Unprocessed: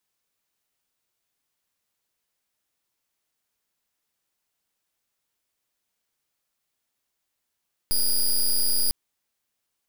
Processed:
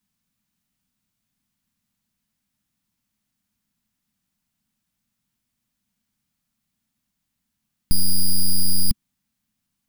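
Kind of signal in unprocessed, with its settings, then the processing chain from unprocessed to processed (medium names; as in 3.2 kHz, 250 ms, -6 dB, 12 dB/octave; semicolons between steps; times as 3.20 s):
pulse 4.89 kHz, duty 12% -21 dBFS 1.00 s
resonant low shelf 300 Hz +11.5 dB, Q 3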